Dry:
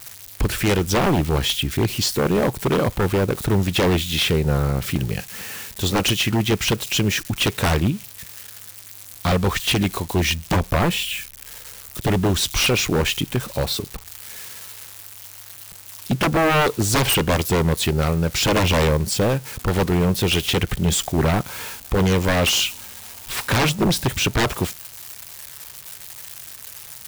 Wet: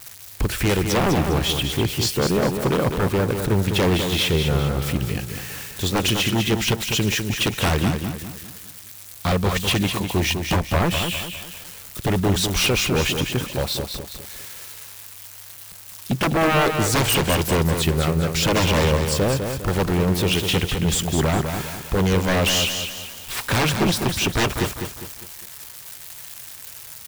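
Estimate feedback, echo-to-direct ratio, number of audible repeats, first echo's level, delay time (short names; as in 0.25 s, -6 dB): 40%, -5.5 dB, 4, -6.5 dB, 0.202 s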